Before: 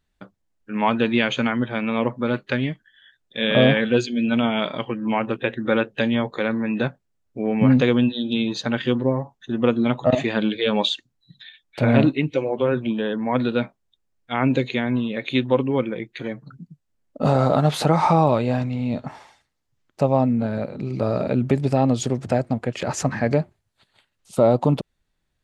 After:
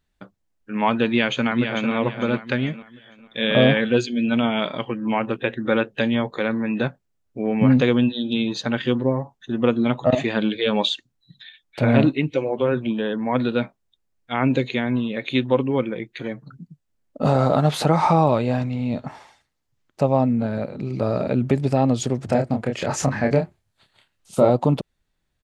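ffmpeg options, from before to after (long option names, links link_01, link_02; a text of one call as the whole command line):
ffmpeg -i in.wav -filter_complex "[0:a]asplit=2[link_01][link_02];[link_02]afade=type=in:start_time=1.06:duration=0.01,afade=type=out:start_time=1.92:duration=0.01,aecho=0:1:450|900|1350|1800:0.446684|0.156339|0.0547187|0.0191516[link_03];[link_01][link_03]amix=inputs=2:normalize=0,asettb=1/sr,asplit=3[link_04][link_05][link_06];[link_04]atrim=end=22.264[link_07];[link_05]atrim=start=22.26:end=24.5,asetpts=PTS-STARTPTS,afade=type=in:duration=0.004:curve=qsin,afade=type=out:start_time=2.236:duration=0.004:curve=qsin,asplit=2[link_08][link_09];[link_09]adelay=29,volume=-4.5dB[link_10];[link_08][link_10]amix=inputs=2:normalize=0,atrim=end_sample=98784[link_11];[link_06]atrim=start=24.496[link_12];[link_07][link_11]acrossfade=duration=0.004:curve1=hsin:curve2=qsin[link_13];[link_13][link_12]acrossfade=duration=0.004:curve1=qsin:curve2=hsin" out.wav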